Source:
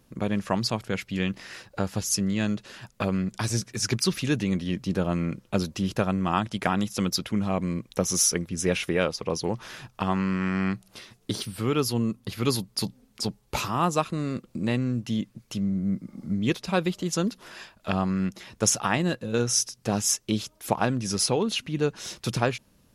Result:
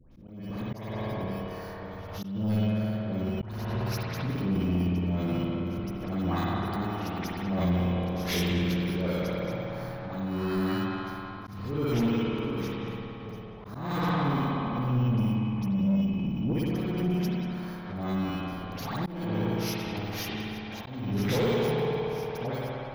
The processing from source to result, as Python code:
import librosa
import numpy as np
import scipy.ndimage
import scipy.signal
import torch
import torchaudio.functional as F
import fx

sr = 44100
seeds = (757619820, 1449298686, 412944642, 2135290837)

p1 = fx.bit_reversed(x, sr, seeds[0], block=16)
p2 = fx.auto_swell(p1, sr, attack_ms=288.0)
p3 = scipy.signal.lfilter(np.full(5, 1.0 / 5), 1.0, p2)
p4 = fx.low_shelf(p3, sr, hz=72.0, db=9.5)
p5 = fx.dispersion(p4, sr, late='highs', ms=118.0, hz=1400.0)
p6 = fx.spec_repair(p5, sr, seeds[1], start_s=2.03, length_s=0.45, low_hz=830.0, high_hz=2600.0, source='before')
p7 = p6 + fx.echo_banded(p6, sr, ms=192, feedback_pct=76, hz=820.0, wet_db=-4.0, dry=0)
p8 = fx.rev_spring(p7, sr, rt60_s=2.3, pass_ms=(56,), chirp_ms=40, drr_db=-4.5)
p9 = 10.0 ** (-19.0 / 20.0) * np.tanh(p8 / 10.0 ** (-19.0 / 20.0))
p10 = fx.low_shelf(p9, sr, hz=150.0, db=2.5)
p11 = fx.auto_swell(p10, sr, attack_ms=351.0)
p12 = fx.pre_swell(p11, sr, db_per_s=48.0)
y = p12 * librosa.db_to_amplitude(-2.5)